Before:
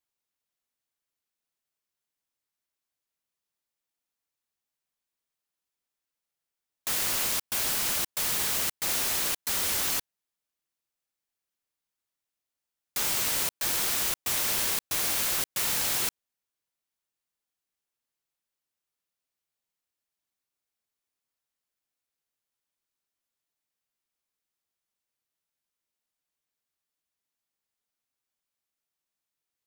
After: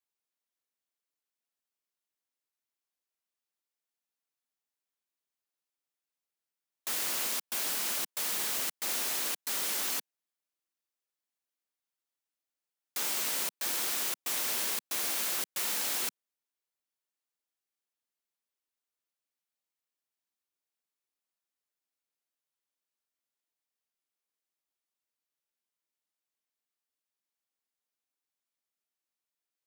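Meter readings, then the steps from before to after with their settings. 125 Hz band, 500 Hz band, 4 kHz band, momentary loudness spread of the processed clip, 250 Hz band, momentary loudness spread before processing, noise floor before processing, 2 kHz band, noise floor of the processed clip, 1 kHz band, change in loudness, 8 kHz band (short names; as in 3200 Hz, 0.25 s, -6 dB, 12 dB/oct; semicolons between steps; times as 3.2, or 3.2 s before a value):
under -15 dB, -4.5 dB, -4.5 dB, 3 LU, -5.5 dB, 3 LU, under -85 dBFS, -4.5 dB, under -85 dBFS, -4.5 dB, -4.5 dB, -4.5 dB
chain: HPF 200 Hz 24 dB/oct; gain -4.5 dB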